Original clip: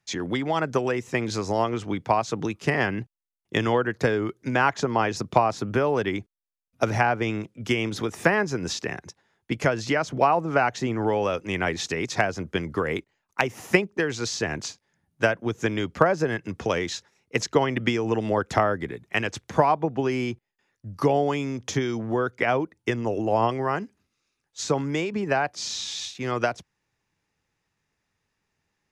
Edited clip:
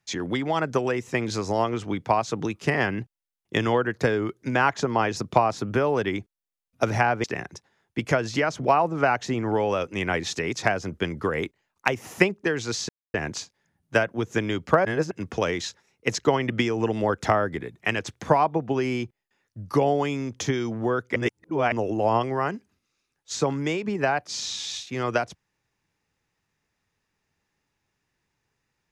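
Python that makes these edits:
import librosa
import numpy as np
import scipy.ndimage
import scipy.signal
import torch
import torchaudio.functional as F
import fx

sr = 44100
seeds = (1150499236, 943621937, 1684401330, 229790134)

y = fx.edit(x, sr, fx.cut(start_s=7.24, length_s=1.53),
    fx.insert_silence(at_s=14.42, length_s=0.25),
    fx.reverse_span(start_s=16.13, length_s=0.26),
    fx.reverse_span(start_s=22.44, length_s=0.56), tone=tone)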